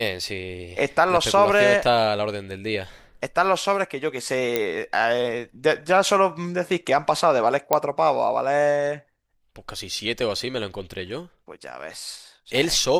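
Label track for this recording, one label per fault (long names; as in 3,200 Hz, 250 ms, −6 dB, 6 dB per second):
4.560000	4.560000	click −7 dBFS
7.730000	7.730000	click −4 dBFS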